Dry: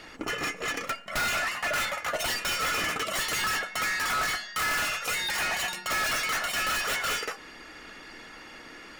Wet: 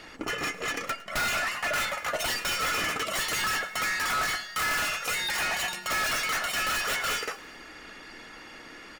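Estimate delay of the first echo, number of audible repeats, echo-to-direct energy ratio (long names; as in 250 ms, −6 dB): 107 ms, 4, −18.0 dB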